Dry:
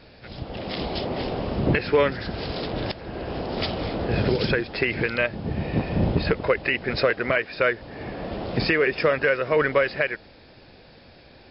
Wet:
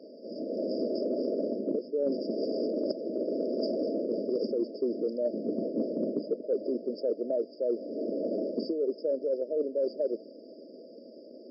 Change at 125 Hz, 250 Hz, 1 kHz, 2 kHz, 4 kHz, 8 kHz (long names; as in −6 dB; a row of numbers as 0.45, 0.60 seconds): −24.0 dB, −3.5 dB, below −20 dB, below −40 dB, −17.0 dB, can't be measured